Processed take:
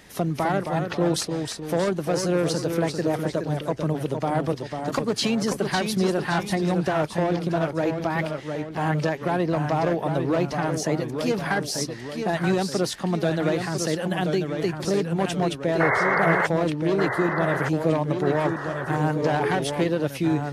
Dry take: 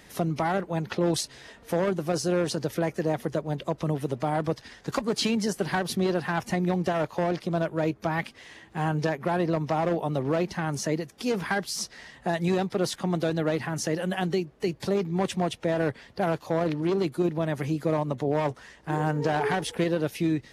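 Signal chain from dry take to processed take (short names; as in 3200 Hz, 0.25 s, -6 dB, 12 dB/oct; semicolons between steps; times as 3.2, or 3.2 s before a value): painted sound noise, 15.8–16.47, 380–2200 Hz -24 dBFS; echoes that change speed 0.244 s, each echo -1 st, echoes 2, each echo -6 dB; gain +2 dB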